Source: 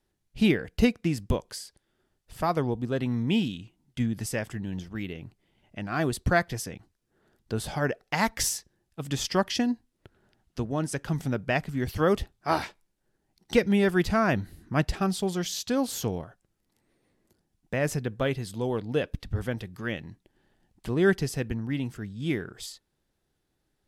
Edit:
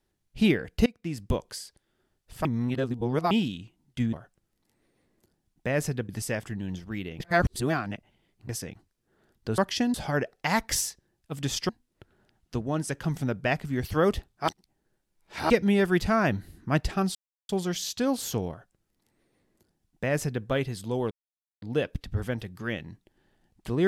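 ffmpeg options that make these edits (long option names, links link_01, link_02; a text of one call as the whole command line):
ffmpeg -i in.wav -filter_complex "[0:a]asplit=15[link_01][link_02][link_03][link_04][link_05][link_06][link_07][link_08][link_09][link_10][link_11][link_12][link_13][link_14][link_15];[link_01]atrim=end=0.86,asetpts=PTS-STARTPTS,afade=type=out:start_time=0.856:duration=0.004:curve=hsin:silence=0.0630957[link_16];[link_02]atrim=start=0.86:end=2.452,asetpts=PTS-STARTPTS,afade=type=in:duration=0.51:silence=0.0630957[link_17];[link_03]atrim=start=2.448:end=3.312,asetpts=PTS-STARTPTS,areverse[link_18];[link_04]atrim=start=3.308:end=4.132[link_19];[link_05]atrim=start=16.198:end=18.162[link_20];[link_06]atrim=start=4.128:end=5.242[link_21];[link_07]atrim=start=5.238:end=6.532,asetpts=PTS-STARTPTS,areverse[link_22];[link_08]atrim=start=6.528:end=7.622[link_23];[link_09]atrim=start=9.368:end=9.732[link_24];[link_10]atrim=start=7.618:end=9.372[link_25];[link_11]atrim=start=9.728:end=12.522[link_26];[link_12]atrim=start=12.518:end=13.542,asetpts=PTS-STARTPTS,areverse[link_27];[link_13]atrim=start=13.538:end=15.19,asetpts=PTS-STARTPTS,afade=type=out:start_time=1.648:duration=0.004:curve=hsin,apad=pad_dur=0.34[link_28];[link_14]atrim=start=15.19:end=18.81,asetpts=PTS-STARTPTS,afade=type=in:duration=0.004:curve=hsin,afade=type=out:start_time=3.616:duration=0.004:curve=hsin,apad=pad_dur=0.51[link_29];[link_15]atrim=start=18.81,asetpts=PTS-STARTPTS,afade=type=in:duration=0.004:curve=hsin[link_30];[link_16][link_17]concat=n=2:v=0:a=1[link_31];[link_31][link_18]acrossfade=duration=0.004:curve1=hsin:curve2=hsin[link_32];[link_32][link_19]acrossfade=duration=0.004:curve1=hsin:curve2=hsin[link_33];[link_33][link_20]acrossfade=duration=0.004:curve1=hsin:curve2=hsin[link_34];[link_34][link_21]acrossfade=duration=0.004:curve1=hsin:curve2=hsin[link_35];[link_35][link_22]acrossfade=duration=0.004:curve1=hsin:curve2=hsin[link_36];[link_36][link_23]acrossfade=duration=0.004:curve1=hsin:curve2=hsin[link_37];[link_37][link_24]acrossfade=duration=0.004:curve1=hsin:curve2=hsin[link_38];[link_38][link_25]acrossfade=duration=0.004:curve1=hsin:curve2=hsin[link_39];[link_39][link_26]acrossfade=duration=0.004:curve1=hsin:curve2=hsin[link_40];[link_40][link_27]acrossfade=duration=0.004:curve1=hsin:curve2=hsin[link_41];[link_28][link_29][link_30]concat=n=3:v=0:a=1[link_42];[link_41][link_42]acrossfade=duration=0.004:curve1=hsin:curve2=hsin" out.wav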